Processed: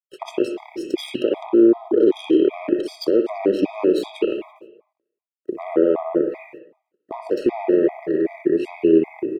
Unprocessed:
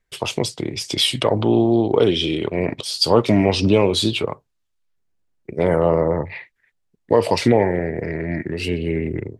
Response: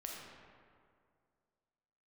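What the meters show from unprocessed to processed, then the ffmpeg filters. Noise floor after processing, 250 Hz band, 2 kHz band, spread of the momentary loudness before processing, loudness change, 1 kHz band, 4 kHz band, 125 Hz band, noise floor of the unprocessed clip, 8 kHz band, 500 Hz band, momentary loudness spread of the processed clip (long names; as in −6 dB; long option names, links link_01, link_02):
−83 dBFS, +1.0 dB, −9.0 dB, 10 LU, −0.5 dB, −7.5 dB, −15.0 dB, −18.5 dB, −71 dBFS, below −15 dB, 0.0 dB, 14 LU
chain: -filter_complex "[0:a]asplit=2[link_01][link_02];[link_02]adelay=337,lowpass=frequency=2000:poles=1,volume=-18dB,asplit=2[link_03][link_04];[link_04]adelay=337,lowpass=frequency=2000:poles=1,volume=0.17[link_05];[link_01][link_03][link_05]amix=inputs=3:normalize=0,aeval=exprs='0.841*(cos(1*acos(clip(val(0)/0.841,-1,1)))-cos(1*PI/2))+0.0841*(cos(7*acos(clip(val(0)/0.841,-1,1)))-cos(7*PI/2))':channel_layout=same,acrusher=bits=10:mix=0:aa=0.000001,highpass=frequency=350:width_type=q:width=4,acompressor=threshold=-15dB:ratio=6,alimiter=limit=-15dB:level=0:latency=1:release=34,tiltshelf=frequency=1300:gain=7,agate=range=-25dB:threshold=-40dB:ratio=16:detection=peak,acompressor=mode=upward:threshold=-38dB:ratio=2.5,asplit=2[link_06][link_07];[link_07]lowpass=frequency=2600:width_type=q:width=5.4[link_08];[1:a]atrim=start_sample=2205,afade=type=out:start_time=0.25:duration=0.01,atrim=end_sample=11466,adelay=61[link_09];[link_08][link_09]afir=irnorm=-1:irlink=0,volume=-5dB[link_10];[link_06][link_10]amix=inputs=2:normalize=0,afftfilt=real='re*gt(sin(2*PI*2.6*pts/sr)*(1-2*mod(floor(b*sr/1024/640),2)),0)':imag='im*gt(sin(2*PI*2.6*pts/sr)*(1-2*mod(floor(b*sr/1024/640),2)),0)':win_size=1024:overlap=0.75,volume=2dB"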